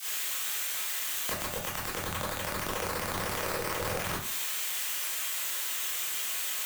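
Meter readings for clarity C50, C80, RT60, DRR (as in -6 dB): 2.5 dB, 8.0 dB, 0.50 s, -7.5 dB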